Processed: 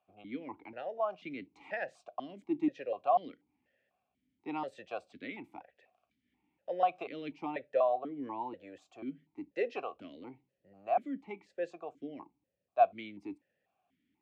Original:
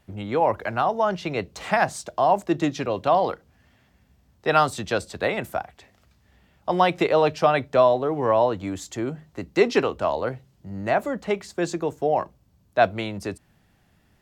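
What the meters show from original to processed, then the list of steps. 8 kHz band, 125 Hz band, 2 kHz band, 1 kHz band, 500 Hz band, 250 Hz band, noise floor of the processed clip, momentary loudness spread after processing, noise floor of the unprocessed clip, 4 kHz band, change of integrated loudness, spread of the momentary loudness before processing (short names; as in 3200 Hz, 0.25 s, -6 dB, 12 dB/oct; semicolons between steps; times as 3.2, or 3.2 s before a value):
under -30 dB, -26.0 dB, -17.0 dB, -12.0 dB, -14.0 dB, -12.0 dB, -84 dBFS, 19 LU, -62 dBFS, -20.5 dB, -13.0 dB, 12 LU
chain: vowel sequencer 4.1 Hz; gain -4 dB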